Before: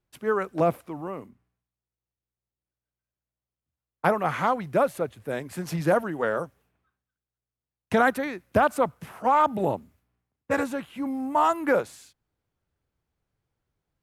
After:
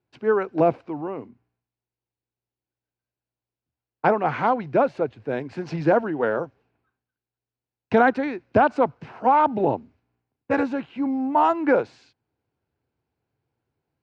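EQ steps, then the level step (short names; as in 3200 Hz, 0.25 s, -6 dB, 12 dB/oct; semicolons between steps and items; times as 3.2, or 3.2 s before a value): speaker cabinet 120–4700 Hz, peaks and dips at 180 Hz -8 dB, 580 Hz -5 dB, 1200 Hz -8 dB, 1900 Hz -6 dB, 3400 Hz -7 dB; high shelf 3500 Hz -7.5 dB; +6.5 dB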